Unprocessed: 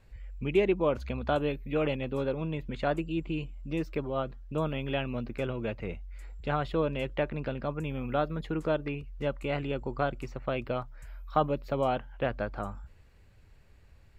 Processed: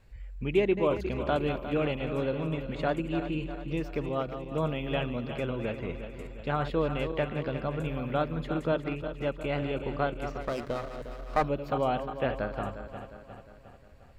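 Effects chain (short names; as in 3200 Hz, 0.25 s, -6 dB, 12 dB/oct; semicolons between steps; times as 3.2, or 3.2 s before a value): regenerating reverse delay 0.178 s, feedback 72%, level -9 dB; 10.41–11.44 running maximum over 9 samples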